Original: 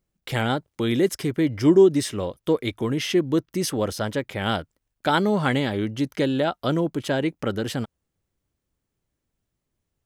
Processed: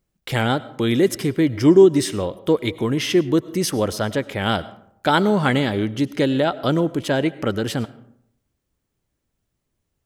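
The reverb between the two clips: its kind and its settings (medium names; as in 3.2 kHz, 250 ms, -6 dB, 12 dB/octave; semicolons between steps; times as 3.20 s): algorithmic reverb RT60 0.72 s, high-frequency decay 0.5×, pre-delay 60 ms, DRR 17.5 dB; trim +3.5 dB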